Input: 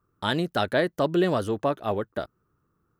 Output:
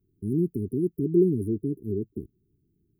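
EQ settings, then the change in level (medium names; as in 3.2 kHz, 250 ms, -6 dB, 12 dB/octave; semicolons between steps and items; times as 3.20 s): brick-wall FIR band-stop 430–9100 Hz; peaking EQ 9 kHz -9 dB 1.5 oct; +3.0 dB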